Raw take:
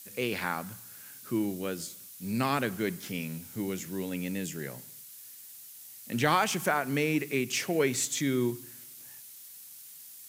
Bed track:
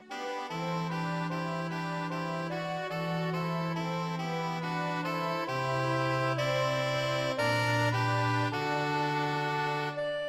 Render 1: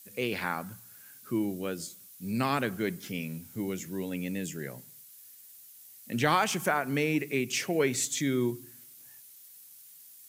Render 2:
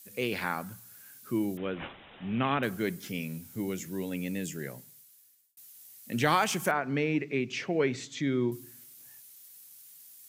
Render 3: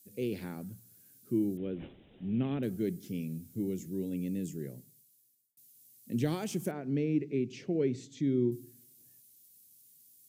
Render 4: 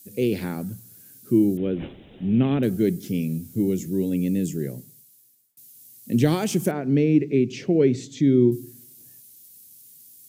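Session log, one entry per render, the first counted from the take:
denoiser 6 dB, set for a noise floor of -49 dBFS
1.57–2.63 careless resampling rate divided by 6×, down none, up filtered; 4.68–5.57 fade out; 6.71–8.52 air absorption 180 m
EQ curve 370 Hz 0 dB, 1100 Hz -22 dB, 4100 Hz -11 dB, 9700 Hz -8 dB
gain +11.5 dB

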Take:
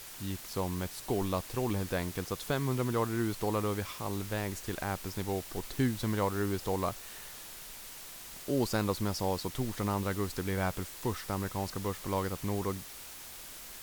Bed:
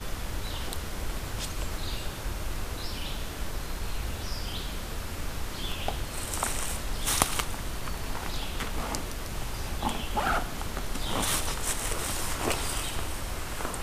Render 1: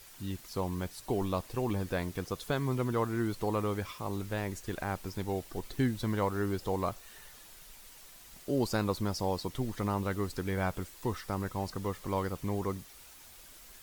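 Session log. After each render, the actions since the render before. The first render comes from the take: denoiser 8 dB, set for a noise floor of -47 dBFS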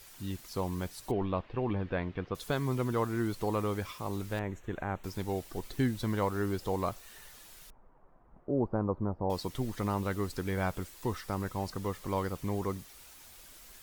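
1.11–2.35 LPF 3100 Hz 24 dB/oct; 4.39–5.04 running mean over 9 samples; 7.7–9.3 LPF 1100 Hz 24 dB/oct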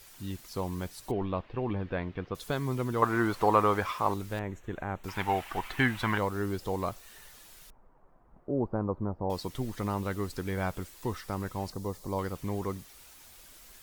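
3.02–4.14 bell 1100 Hz +13.5 dB 2.4 oct; 5.08–6.18 band shelf 1500 Hz +15 dB 2.4 oct; 11.72–12.19 band shelf 2000 Hz -10 dB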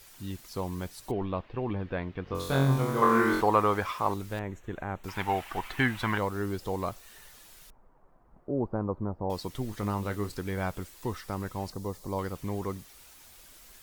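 2.24–3.41 flutter echo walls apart 3.8 m, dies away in 0.82 s; 9.66–10.35 doubler 29 ms -11 dB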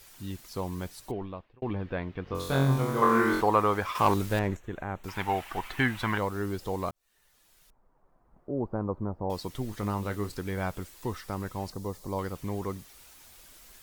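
0.94–1.62 fade out; 3.95–4.57 sample leveller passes 2; 6.91–8.89 fade in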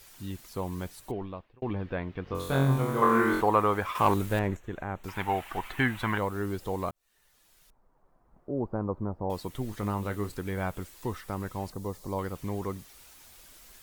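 dynamic EQ 5100 Hz, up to -7 dB, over -56 dBFS, Q 1.8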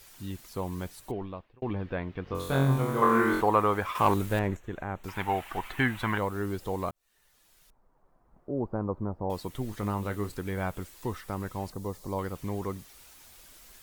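nothing audible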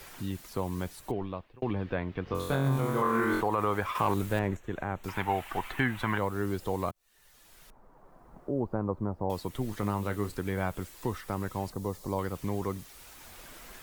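limiter -17 dBFS, peak gain reduction 7.5 dB; three-band squash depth 40%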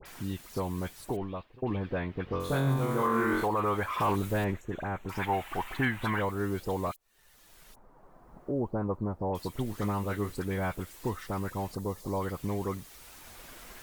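short-mantissa float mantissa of 8-bit; dispersion highs, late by 56 ms, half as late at 1900 Hz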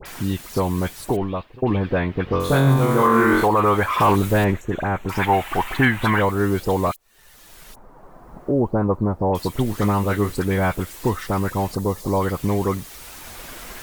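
gain +11.5 dB

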